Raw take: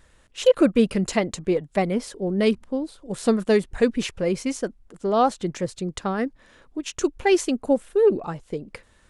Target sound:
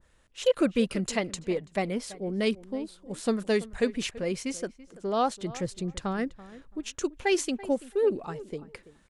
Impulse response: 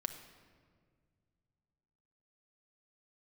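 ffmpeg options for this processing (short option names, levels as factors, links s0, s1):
-filter_complex "[0:a]asettb=1/sr,asplit=3[s0][s1][s2];[s0]atrim=end=5.504[s3];[s1]atrim=start=5.5:end=6.95,asetpts=PTS-STARTPTS,afade=t=in:d=0.004:c=qsin,afade=t=out:st=1.446:d=0.004:c=qsin,lowshelf=f=140:g=10[s4];[s2]atrim=start=6.946[s5];[s3][s4]acrossfade=d=0.004:c1=hsin:c2=qsin[s6];[s6][s5]acrossfade=d=0.004:c1=qsin:c2=hsin,asplit=2[s7][s8];[s8]adelay=334,lowpass=f=2300:p=1,volume=0.133,asplit=2[s9][s10];[s10]adelay=334,lowpass=f=2300:p=1,volume=0.18[s11];[s9][s11]amix=inputs=2:normalize=0[s12];[s7][s12]amix=inputs=2:normalize=0,adynamicequalizer=threshold=0.0178:dfrequency=1600:dqfactor=0.7:tfrequency=1600:tqfactor=0.7:attack=5:release=100:ratio=0.375:range=2.5:mode=boostabove:tftype=highshelf,volume=0.447"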